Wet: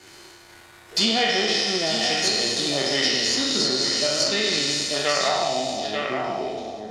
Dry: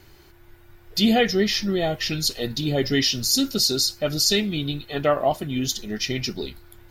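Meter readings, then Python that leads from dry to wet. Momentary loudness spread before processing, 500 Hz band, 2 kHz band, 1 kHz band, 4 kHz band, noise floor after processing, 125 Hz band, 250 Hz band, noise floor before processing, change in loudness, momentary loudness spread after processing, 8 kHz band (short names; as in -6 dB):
8 LU, -0.5 dB, +4.5 dB, +3.0 dB, +3.0 dB, -48 dBFS, -9.5 dB, -5.5 dB, -51 dBFS, +1.0 dB, 7 LU, +1.0 dB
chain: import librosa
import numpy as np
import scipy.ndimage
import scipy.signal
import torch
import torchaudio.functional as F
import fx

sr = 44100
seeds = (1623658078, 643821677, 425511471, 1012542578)

y = fx.spec_trails(x, sr, decay_s=1.96)
y = fx.power_curve(y, sr, exponent=1.4)
y = fx.filter_sweep_lowpass(y, sr, from_hz=8600.0, to_hz=710.0, start_s=4.81, end_s=5.55, q=1.8)
y = fx.highpass(y, sr, hz=430.0, slope=6)
y = y + 10.0 ** (-9.5 / 20.0) * np.pad(y, (int(887 * sr / 1000.0), 0))[:len(y)]
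y = fx.rev_double_slope(y, sr, seeds[0], early_s=0.78, late_s=3.2, knee_db=-27, drr_db=6.5)
y = fx.env_lowpass_down(y, sr, base_hz=2400.0, full_db=-11.5)
y = fx.band_squash(y, sr, depth_pct=70)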